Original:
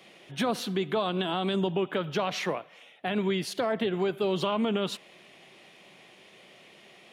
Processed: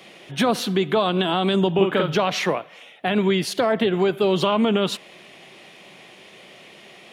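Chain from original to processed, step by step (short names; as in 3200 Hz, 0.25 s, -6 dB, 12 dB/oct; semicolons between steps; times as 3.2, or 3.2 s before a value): 1.74–2.16 doubler 46 ms -3 dB; gain +8 dB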